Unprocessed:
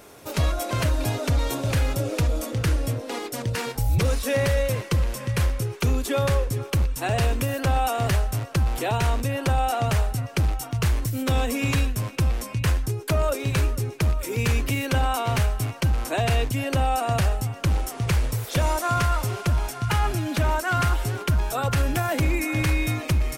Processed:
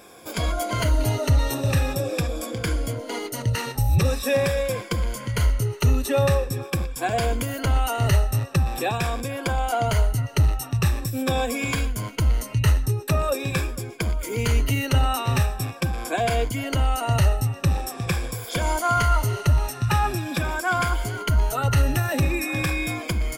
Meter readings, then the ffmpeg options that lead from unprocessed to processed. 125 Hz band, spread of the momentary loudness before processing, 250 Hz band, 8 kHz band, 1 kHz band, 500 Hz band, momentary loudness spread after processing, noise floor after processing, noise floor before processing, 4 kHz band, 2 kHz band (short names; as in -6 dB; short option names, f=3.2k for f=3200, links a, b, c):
+0.5 dB, 3 LU, 0.0 dB, +1.0 dB, +0.5 dB, +1.0 dB, 6 LU, -38 dBFS, -38 dBFS, +1.0 dB, +1.0 dB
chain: -af "afftfilt=real='re*pow(10,12/40*sin(2*PI*(1.8*log(max(b,1)*sr/1024/100)/log(2)-(-0.44)*(pts-256)/sr)))':imag='im*pow(10,12/40*sin(2*PI*(1.8*log(max(b,1)*sr/1024/100)/log(2)-(-0.44)*(pts-256)/sr)))':win_size=1024:overlap=0.75,volume=-1dB"